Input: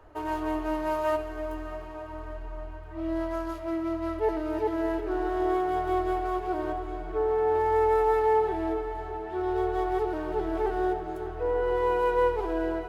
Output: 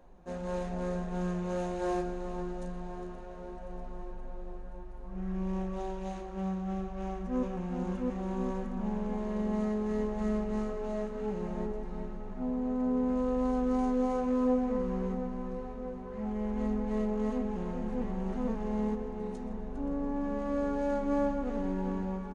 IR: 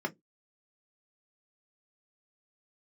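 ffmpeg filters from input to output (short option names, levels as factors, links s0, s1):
-filter_complex "[0:a]asplit=2[s0][s1];[s1]adelay=233.2,volume=0.398,highshelf=f=4000:g=-5.25[s2];[s0][s2]amix=inputs=2:normalize=0,asetrate=25442,aresample=44100,equalizer=f=320:t=o:w=1.7:g=-8"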